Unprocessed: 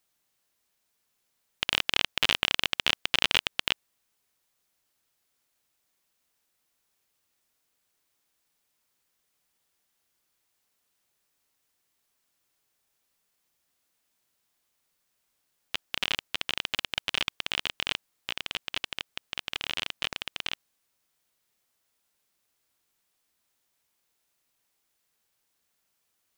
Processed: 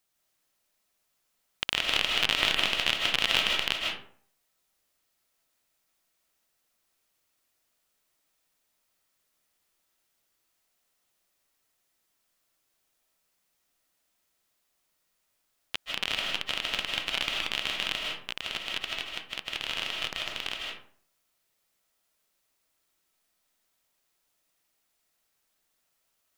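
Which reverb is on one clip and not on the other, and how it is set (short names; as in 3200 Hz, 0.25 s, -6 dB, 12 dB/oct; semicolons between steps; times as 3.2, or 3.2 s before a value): digital reverb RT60 0.55 s, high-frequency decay 0.55×, pre-delay 0.115 s, DRR -0.5 dB; gain -2 dB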